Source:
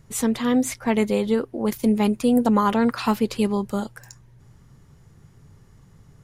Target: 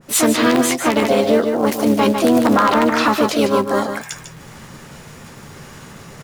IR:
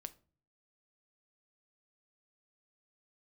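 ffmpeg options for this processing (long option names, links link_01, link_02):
-filter_complex "[0:a]asplit=4[link_01][link_02][link_03][link_04];[link_02]asetrate=22050,aresample=44100,atempo=2,volume=-11dB[link_05];[link_03]asetrate=58866,aresample=44100,atempo=0.749154,volume=-4dB[link_06];[link_04]asetrate=66075,aresample=44100,atempo=0.66742,volume=-17dB[link_07];[link_01][link_05][link_06][link_07]amix=inputs=4:normalize=0,acrusher=bits=7:mode=log:mix=0:aa=0.000001,aeval=exprs='(mod(2.11*val(0)+1,2)-1)/2.11':channel_layout=same,asplit=2[link_08][link_09];[link_09]highpass=frequency=720:poles=1,volume=11dB,asoftclip=type=tanh:threshold=-7dB[link_10];[link_08][link_10]amix=inputs=2:normalize=0,lowpass=frequency=7100:poles=1,volume=-6dB,asplit=2[link_11][link_12];[link_12]adelay=13,volume=-12dB[link_13];[link_11][link_13]amix=inputs=2:normalize=0,areverse,acompressor=mode=upward:threshold=-32dB:ratio=2.5,areverse,lowshelf=frequency=97:gain=-11.5,asplit=2[link_14][link_15];[link_15]aecho=0:1:149:0.376[link_16];[link_14][link_16]amix=inputs=2:normalize=0,alimiter=level_in=11.5dB:limit=-1dB:release=50:level=0:latency=1,adynamicequalizer=threshold=0.0794:dfrequency=1600:dqfactor=0.7:tfrequency=1600:tqfactor=0.7:attack=5:release=100:ratio=0.375:range=2:mode=cutabove:tftype=highshelf,volume=-4.5dB"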